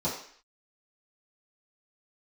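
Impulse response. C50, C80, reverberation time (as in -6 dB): 5.5 dB, 9.0 dB, 0.55 s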